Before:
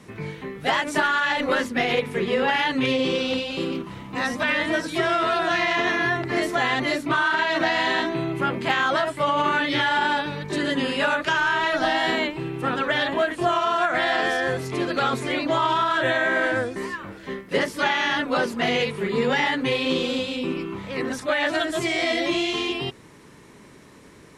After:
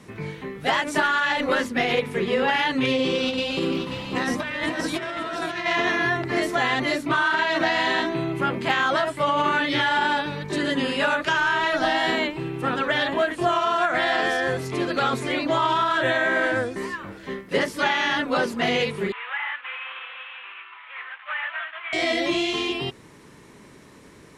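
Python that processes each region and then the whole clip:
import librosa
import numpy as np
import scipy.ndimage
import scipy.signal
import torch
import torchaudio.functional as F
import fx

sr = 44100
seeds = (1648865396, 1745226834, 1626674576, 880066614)

y = fx.chain(x, sr, fx.over_compress(threshold_db=-26.0, ratio=-0.5),
    fx.echo_single(ms=537, db=-8.5), at=(3.23, 5.66))
y = fx.chain(y, sr, fx.cvsd(bps=16000),
    fx.highpass(hz=1100.0, slope=24), at=(19.12, 21.93))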